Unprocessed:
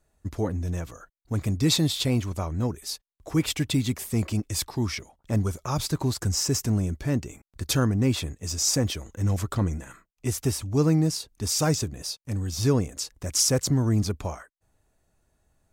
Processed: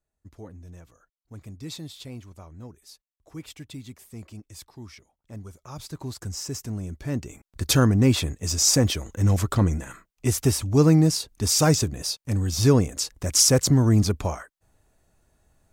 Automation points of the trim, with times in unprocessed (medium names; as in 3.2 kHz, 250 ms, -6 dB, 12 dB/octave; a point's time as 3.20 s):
5.42 s -15 dB
6.16 s -7.5 dB
6.77 s -7.5 dB
7.67 s +4.5 dB